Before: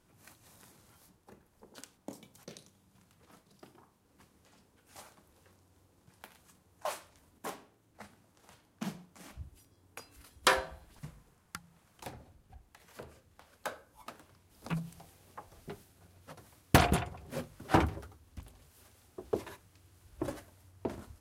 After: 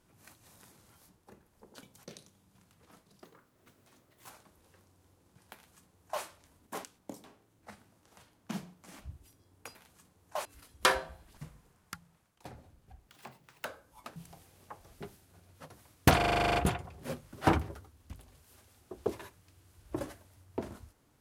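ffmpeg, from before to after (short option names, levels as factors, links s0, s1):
-filter_complex "[0:a]asplit=22[s0][s1][s2][s3][s4][s5][s6][s7][s8][s9][s10][s11][s12][s13][s14][s15][s16][s17][s18][s19][s20][s21];[s0]atrim=end=1.832[s22];[s1]atrim=start=2.228:end=3.644[s23];[s2]atrim=start=3.64:end=5.02,asetpts=PTS-STARTPTS,asetrate=57330,aresample=44100[s24];[s3]atrim=start=5.016:end=7.562[s25];[s4]atrim=start=1.828:end=2.232[s26];[s5]atrim=start=7.558:end=10.072[s27];[s6]atrim=start=6.248:end=6.952[s28];[s7]atrim=start=10.068:end=12.07,asetpts=PTS-STARTPTS,afade=t=out:st=1.502:d=0.5:silence=0.11885[s29];[s8]atrim=start=12.07:end=12.704,asetpts=PTS-STARTPTS,afade=t=in:d=0.004:c=hsin:silence=0.11885[s30];[s9]atrim=start=12.7:end=13.67,asetpts=PTS-STARTPTS,asetrate=75411,aresample=44100[s31];[s10]atrim=start=13.666:end=14.182[s32];[s11]atrim=start=14.828:end=16.872[s33];[s12]atrim=start=16.828:end=16.872[s34];[s13]atrim=start=16.828:end=16.872[s35];[s14]atrim=start=16.828:end=16.872[s36];[s15]atrim=start=16.828:end=16.872[s37];[s16]atrim=start=16.828:end=16.872[s38];[s17]atrim=start=16.828:end=16.872[s39];[s18]atrim=start=16.828:end=16.872[s40];[s19]atrim=start=16.828:end=16.872[s41];[s20]atrim=start=16.828:end=16.872[s42];[s21]atrim=start=16.828[s43];[s22][s23]acrossfade=d=0.004:c1=hsin:c2=hsin[s44];[s44][s24]acrossfade=d=0.004:c1=hsin:c2=hsin[s45];[s45][s25]acrossfade=d=0.004:c1=hsin:c2=hsin[s46];[s46][s26]acrossfade=d=0.004:c1=hsin:c2=hsin[s47];[s47][s27]acrossfade=d=0.004:c1=hsin:c2=hsin[s48];[s48][s28]acrossfade=d=0.004:c1=hsin:c2=hsin[s49];[s29][s30]concat=n=2:v=0:a=1[s50];[s49][s50]acrossfade=d=0.004:c1=hsin:c2=hsin[s51];[s51][s31]acrossfade=d=0.004:c1=hsin:c2=hsin[s52];[s52][s32]acrossfade=d=0.004:c1=hsin:c2=hsin[s53];[s53][s33]acrossfade=d=0.004:c1=hsin:c2=hsin[s54];[s54][s34]acrossfade=d=0.004:c1=hsin:c2=hsin[s55];[s55][s35]acrossfade=d=0.004:c1=hsin:c2=hsin[s56];[s56][s36]acrossfade=d=0.004:c1=hsin:c2=hsin[s57];[s57][s37]acrossfade=d=0.004:c1=hsin:c2=hsin[s58];[s58][s38]acrossfade=d=0.004:c1=hsin:c2=hsin[s59];[s59][s39]acrossfade=d=0.004:c1=hsin:c2=hsin[s60];[s60][s40]acrossfade=d=0.004:c1=hsin:c2=hsin[s61];[s61][s41]acrossfade=d=0.004:c1=hsin:c2=hsin[s62];[s62][s42]acrossfade=d=0.004:c1=hsin:c2=hsin[s63];[s63][s43]acrossfade=d=0.004:c1=hsin:c2=hsin"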